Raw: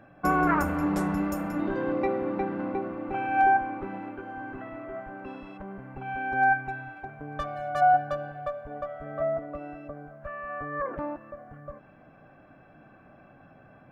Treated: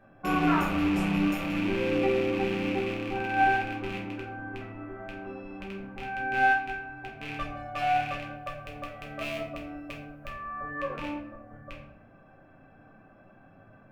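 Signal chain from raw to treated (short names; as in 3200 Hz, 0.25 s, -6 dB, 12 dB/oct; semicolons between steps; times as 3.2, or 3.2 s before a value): rattling part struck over -39 dBFS, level -20 dBFS; 8.31–10.75 high shelf 6800 Hz +10.5 dB; shoebox room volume 81 m³, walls mixed, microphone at 1.2 m; gain -8 dB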